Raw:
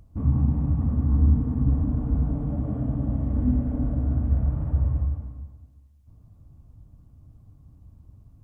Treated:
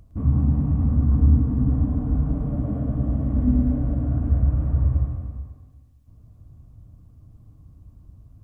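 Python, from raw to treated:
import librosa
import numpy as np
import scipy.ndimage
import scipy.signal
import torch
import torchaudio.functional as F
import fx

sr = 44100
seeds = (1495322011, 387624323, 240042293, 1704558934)

p1 = fx.notch(x, sr, hz=860.0, q=12.0)
p2 = p1 + fx.echo_feedback(p1, sr, ms=109, feedback_pct=58, wet_db=-7.5, dry=0)
y = p2 * librosa.db_to_amplitude(1.5)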